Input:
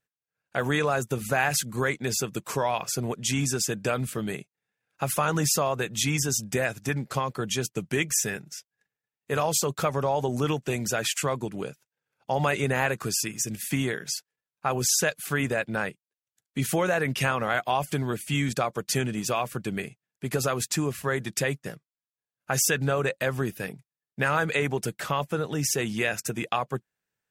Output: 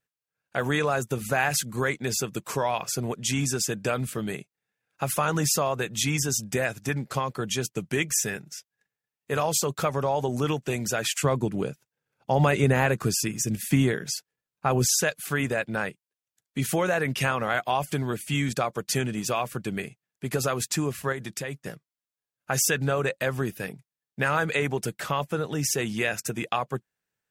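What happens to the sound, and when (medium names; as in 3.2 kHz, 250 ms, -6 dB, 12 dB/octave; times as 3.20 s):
11.24–14.89 s: bass shelf 470 Hz +7.5 dB
21.12–21.67 s: compression 2.5:1, threshold -31 dBFS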